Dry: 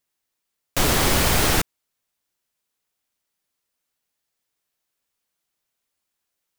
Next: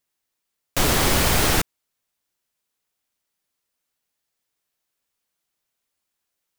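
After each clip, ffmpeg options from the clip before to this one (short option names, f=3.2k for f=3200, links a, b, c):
-af anull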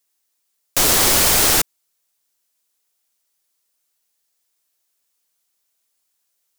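-af "bass=f=250:g=-7,treble=f=4k:g=8,volume=1.5dB"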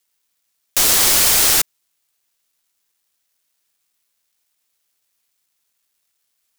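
-af "acrusher=bits=10:mix=0:aa=0.000001,tiltshelf=f=1.3k:g=-4,volume=-2dB"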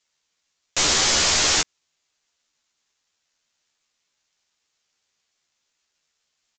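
-filter_complex "[0:a]aresample=16000,asoftclip=type=tanh:threshold=-15dB,aresample=44100,asplit=2[a][b];[b]adelay=13,volume=-4dB[c];[a][c]amix=inputs=2:normalize=0"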